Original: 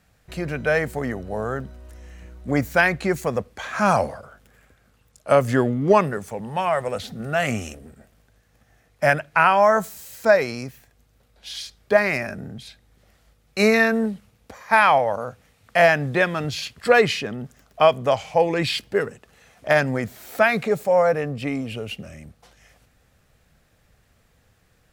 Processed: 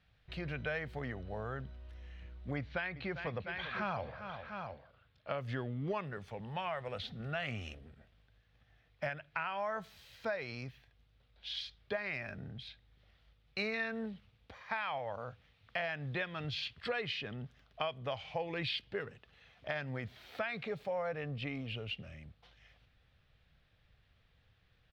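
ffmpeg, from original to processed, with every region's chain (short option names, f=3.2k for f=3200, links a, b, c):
-filter_complex "[0:a]asettb=1/sr,asplit=3[a][b][c];[a]atrim=end=2.564[d];[b]atrim=start=2.56:end=5.38,asetpts=PTS-STARTPTS,afade=t=in:d=0.004:c=qsin,afade=t=out:st=2.816:d=0.004:c=qsin,lowpass=f=4.8k:w=0.5412,lowpass=f=4.8k:w=1.3066,aecho=1:1:397|701:0.168|0.224,atrim=end_sample=124362[e];[c]atrim=start=5.376[f];[d][e]acrossfade=d=0.004:c1=hsin:c2=qsin[g];[g][f]acrossfade=d=0.004:c1=qsin:c2=hsin,firequalizer=gain_entry='entry(120,0);entry(210,-7);entry(3400,4);entry(7300,-22)':delay=0.05:min_phase=1,alimiter=limit=-10.5dB:level=0:latency=1:release=451,acompressor=threshold=-28dB:ratio=3,volume=-7.5dB"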